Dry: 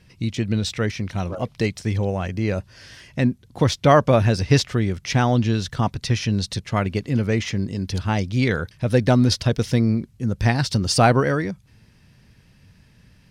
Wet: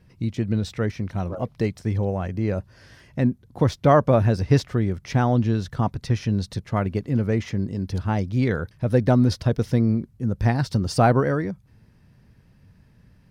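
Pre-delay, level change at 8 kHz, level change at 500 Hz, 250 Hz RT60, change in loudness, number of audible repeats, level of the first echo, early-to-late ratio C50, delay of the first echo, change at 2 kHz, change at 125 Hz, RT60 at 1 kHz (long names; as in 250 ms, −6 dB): no reverb audible, −10.5 dB, −1.5 dB, no reverb audible, −1.5 dB, no echo audible, no echo audible, no reverb audible, no echo audible, −6.0 dB, −1.0 dB, no reverb audible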